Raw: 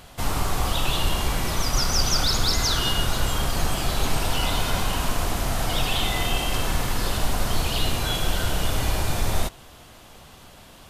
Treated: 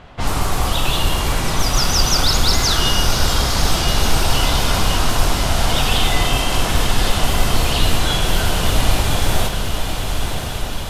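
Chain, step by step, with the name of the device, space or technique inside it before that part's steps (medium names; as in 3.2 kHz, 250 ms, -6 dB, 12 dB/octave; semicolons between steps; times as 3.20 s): cassette deck with a dynamic noise filter (white noise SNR 33 dB; level-controlled noise filter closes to 2.3 kHz, open at -17.5 dBFS); echo that smears into a reverb 1056 ms, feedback 65%, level -6 dB; trim +5.5 dB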